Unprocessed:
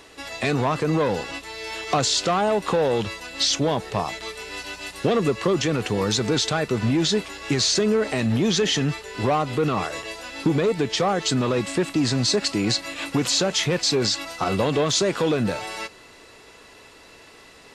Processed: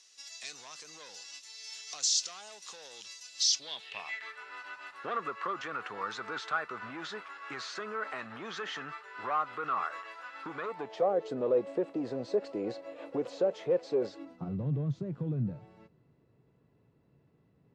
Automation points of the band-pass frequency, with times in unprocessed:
band-pass, Q 3.7
3.44 s 5900 Hz
4.44 s 1300 Hz
10.62 s 1300 Hz
11.11 s 510 Hz
14.09 s 510 Hz
14.52 s 140 Hz

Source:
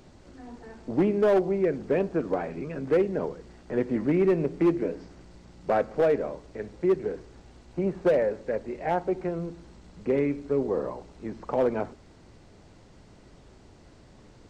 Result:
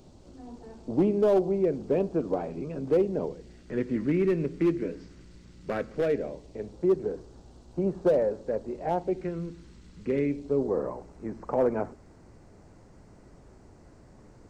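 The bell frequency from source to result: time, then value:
bell -12 dB 1.1 oct
3.14 s 1800 Hz
3.72 s 760 Hz
5.92 s 760 Hz
6.82 s 2100 Hz
8.87 s 2100 Hz
9.33 s 710 Hz
10.07 s 710 Hz
10.83 s 3400 Hz

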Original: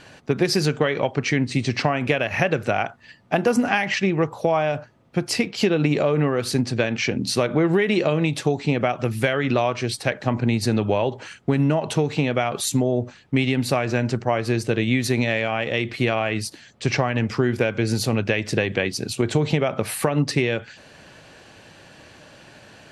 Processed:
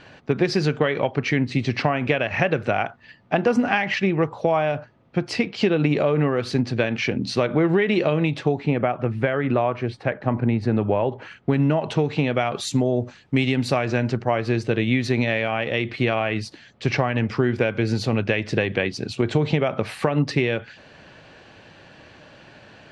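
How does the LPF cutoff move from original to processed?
8.17 s 4000 Hz
8.94 s 1800 Hz
10.99 s 1800 Hz
11.56 s 3900 Hz
12.12 s 3900 Hz
13.38 s 8500 Hz
14.19 s 4200 Hz

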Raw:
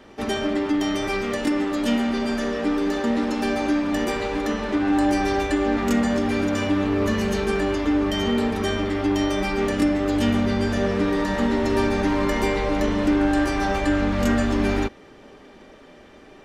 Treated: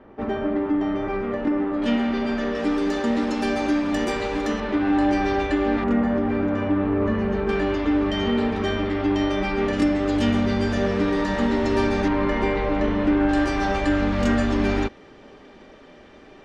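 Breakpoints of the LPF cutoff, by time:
1400 Hz
from 1.82 s 3500 Hz
from 2.55 s 8600 Hz
from 4.6 s 3800 Hz
from 5.84 s 1600 Hz
from 7.49 s 3800 Hz
from 9.73 s 6600 Hz
from 12.08 s 2800 Hz
from 13.29 s 6100 Hz

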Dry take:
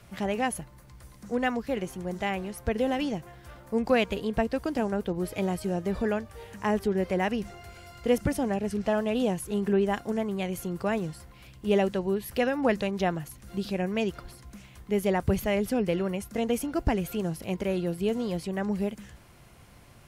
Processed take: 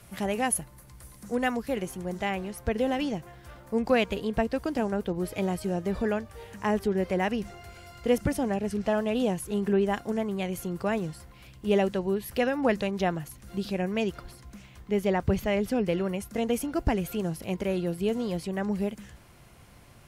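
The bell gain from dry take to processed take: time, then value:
bell 11000 Hz 0.89 oct
1.57 s +10 dB
2.29 s 0 dB
14.22 s 0 dB
15.27 s -10.5 dB
16.11 s +0.5 dB

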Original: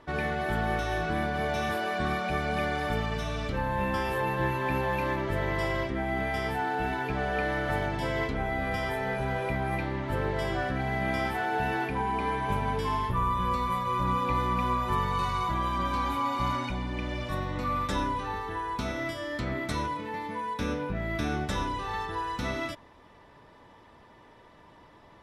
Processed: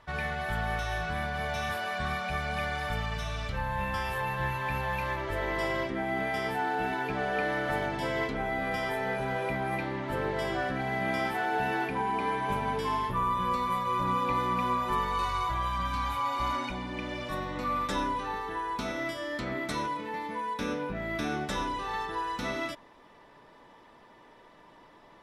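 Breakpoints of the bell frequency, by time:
bell -14.5 dB 1.2 oct
5.05 s 320 Hz
5.72 s 69 Hz
14.79 s 69 Hz
15.96 s 440 Hz
16.77 s 78 Hz

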